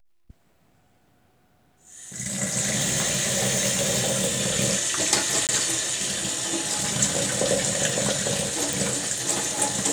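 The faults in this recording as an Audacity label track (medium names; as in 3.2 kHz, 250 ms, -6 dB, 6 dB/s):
2.770000	4.420000	clipped -19 dBFS
5.470000	5.490000	dropout 18 ms
8.730000	8.730000	pop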